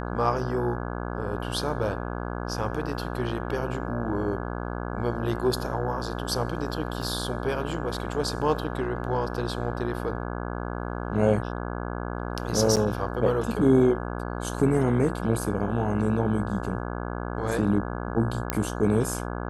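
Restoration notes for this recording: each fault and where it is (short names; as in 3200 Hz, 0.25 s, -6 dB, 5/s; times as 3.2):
buzz 60 Hz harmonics 28 -32 dBFS
7.02 gap 2.3 ms
12.76–12.77 gap 7.7 ms
18.5 pop -8 dBFS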